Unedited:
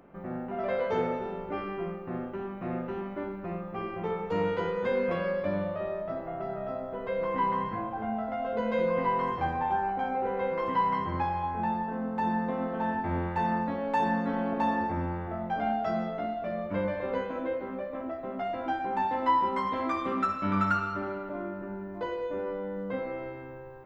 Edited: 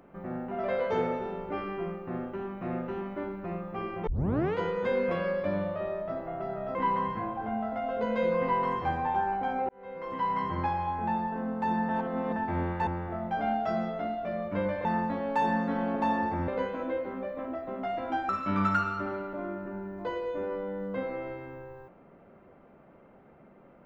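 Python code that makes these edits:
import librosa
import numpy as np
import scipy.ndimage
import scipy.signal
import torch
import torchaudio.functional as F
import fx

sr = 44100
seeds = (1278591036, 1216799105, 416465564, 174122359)

y = fx.edit(x, sr, fx.tape_start(start_s=4.07, length_s=0.48),
    fx.cut(start_s=6.75, length_s=0.56),
    fx.fade_in_span(start_s=10.25, length_s=0.83),
    fx.reverse_span(start_s=12.45, length_s=0.47),
    fx.move(start_s=13.43, length_s=1.63, to_s=17.04),
    fx.cut(start_s=18.85, length_s=1.4), tone=tone)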